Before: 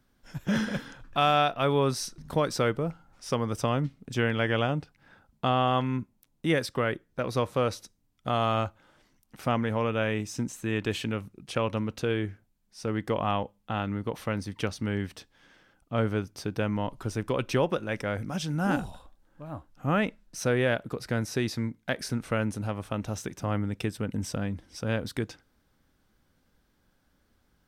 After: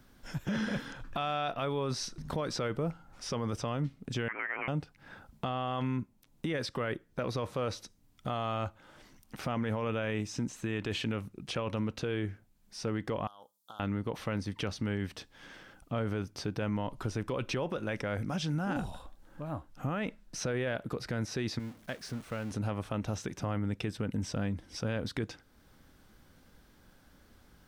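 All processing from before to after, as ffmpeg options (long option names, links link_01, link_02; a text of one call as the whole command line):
ffmpeg -i in.wav -filter_complex "[0:a]asettb=1/sr,asplit=3[link_01][link_02][link_03];[link_01]atrim=end=4.284[link_04];[link_02]atrim=start=4.28:end=4.68,asetpts=PTS-STARTPTS,afade=type=in:duration=0.004:curve=qsin,afade=type=out:start_time=0.396:duration=0.004:curve=qsin,highpass=frequency=1400:width=0.5412,highpass=frequency=1400:width=1.3066,lowpass=frequency=3100:width_type=q:width=0.5098,lowpass=frequency=3100:width_type=q:width=0.6013,lowpass=frequency=3100:width_type=q:width=0.9,lowpass=frequency=3100:width_type=q:width=2.563,afreqshift=-3600[link_05];[link_03]atrim=start=4.676[link_06];[link_04][link_05]acrossfade=duration=0.004:curve1=hsin:curve2=qsin[link_07];[link_07][link_06]acrossfade=duration=0.004:curve1=qsin:curve2=hsin,asettb=1/sr,asplit=3[link_08][link_09][link_10];[link_08]atrim=end=13.274[link_11];[link_09]atrim=start=13.27:end=13.8,asetpts=PTS-STARTPTS,afade=type=in:duration=0.004:curve=qsin,afade=type=out:start_time=0.526:duration=0.004:curve=qsin,aderivative,acompressor=threshold=-46dB:ratio=12:attack=3.2:release=140:knee=1:detection=peak,asuperstop=centerf=2200:order=8:qfactor=1.1[link_12];[link_10]atrim=start=13.796[link_13];[link_11][link_12]acrossfade=duration=0.004:curve1=hsin:curve2=qsin[link_14];[link_14][link_13]acrossfade=duration=0.004:curve1=qsin:curve2=hsin,asettb=1/sr,asplit=3[link_15][link_16][link_17];[link_15]atrim=end=21.594[link_18];[link_16]atrim=start=21.59:end=22.51,asetpts=PTS-STARTPTS,afade=type=in:duration=0.004:curve=qsin,afade=type=out:start_time=0.916:duration=0.004:curve=qsin,aeval=exprs='val(0)+0.5*0.0282*sgn(val(0))':channel_layout=same,agate=range=-33dB:threshold=-24dB:ratio=3:release=100:detection=peak,acompressor=threshold=-43dB:ratio=2:attack=3.2:release=140:knee=1:detection=peak[link_19];[link_17]atrim=start=22.506[link_20];[link_18][link_19]acrossfade=duration=0.004:curve1=hsin:curve2=qsin[link_21];[link_21][link_20]acrossfade=duration=0.004:curve1=qsin:curve2=hsin,acrossover=split=6400[link_22][link_23];[link_23]acompressor=threshold=-59dB:ratio=4:attack=1:release=60[link_24];[link_22][link_24]amix=inputs=2:normalize=0,alimiter=limit=-23.5dB:level=0:latency=1:release=17,acompressor=threshold=-56dB:ratio=1.5,volume=8.5dB" out.wav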